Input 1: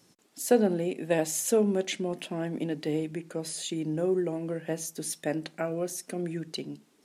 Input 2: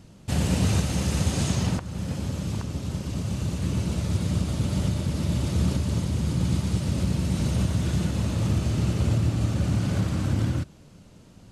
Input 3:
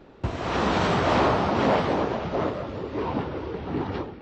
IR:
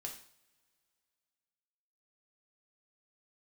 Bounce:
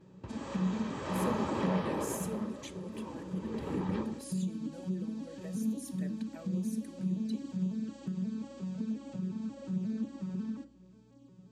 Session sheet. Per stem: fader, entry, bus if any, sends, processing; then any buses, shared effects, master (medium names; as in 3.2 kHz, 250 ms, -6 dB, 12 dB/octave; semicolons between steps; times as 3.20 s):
-10.0 dB, 0.75 s, bus A, send -14.5 dB, none
-3.5 dB, 0.00 s, bus A, send -12.5 dB, vocoder on a broken chord minor triad, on F#3, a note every 179 ms; hum 60 Hz, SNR 28 dB; band-stop 2 kHz, Q 18
0.89 s -13 dB -> 1.26 s -4.5 dB -> 2.09 s -4.5 dB -> 2.54 s -15 dB -> 3.35 s -15 dB -> 3.59 s -5 dB, 0.00 s, no bus, no send, treble shelf 5.3 kHz -11.5 dB; compression 3:1, threshold -27 dBFS, peak gain reduction 7.5 dB
bus A: 0.0 dB, touch-sensitive flanger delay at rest 8.8 ms, full sweep at -24 dBFS; compression 1.5:1, threshold -50 dBFS, peak gain reduction 10.5 dB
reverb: on, pre-delay 3 ms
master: treble shelf 5.8 kHz +9 dB; comb of notches 710 Hz